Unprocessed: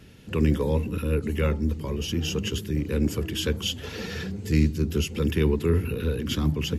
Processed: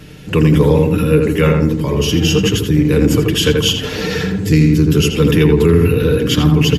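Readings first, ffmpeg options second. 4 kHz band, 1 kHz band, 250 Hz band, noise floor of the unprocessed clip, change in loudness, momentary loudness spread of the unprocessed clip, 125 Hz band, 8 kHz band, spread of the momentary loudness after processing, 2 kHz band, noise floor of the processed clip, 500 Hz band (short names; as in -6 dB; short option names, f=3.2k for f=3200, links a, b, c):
+13.5 dB, +14.0 dB, +13.5 dB, -39 dBFS, +13.0 dB, 7 LU, +13.0 dB, +13.0 dB, 5 LU, +13.5 dB, -25 dBFS, +14.5 dB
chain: -filter_complex "[0:a]aecho=1:1:6.6:0.49,asplit=2[a][b];[b]adelay=83,lowpass=f=2.2k:p=1,volume=-3dB,asplit=2[c][d];[d]adelay=83,lowpass=f=2.2k:p=1,volume=0.4,asplit=2[e][f];[f]adelay=83,lowpass=f=2.2k:p=1,volume=0.4,asplit=2[g][h];[h]adelay=83,lowpass=f=2.2k:p=1,volume=0.4,asplit=2[i][j];[j]adelay=83,lowpass=f=2.2k:p=1,volume=0.4[k];[a][c][e][g][i][k]amix=inputs=6:normalize=0,alimiter=level_in=13dB:limit=-1dB:release=50:level=0:latency=1,volume=-1dB"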